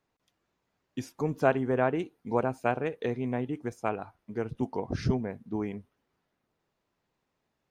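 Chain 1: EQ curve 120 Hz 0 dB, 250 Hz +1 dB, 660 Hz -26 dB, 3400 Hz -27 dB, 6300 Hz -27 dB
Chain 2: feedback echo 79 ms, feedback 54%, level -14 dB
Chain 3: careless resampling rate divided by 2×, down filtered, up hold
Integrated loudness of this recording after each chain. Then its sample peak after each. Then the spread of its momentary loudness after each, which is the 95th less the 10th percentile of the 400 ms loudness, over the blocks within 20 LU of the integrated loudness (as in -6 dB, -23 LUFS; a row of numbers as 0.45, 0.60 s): -36.0, -31.0, -31.5 LUFS; -15.5, -10.5, -10.0 dBFS; 11, 11, 12 LU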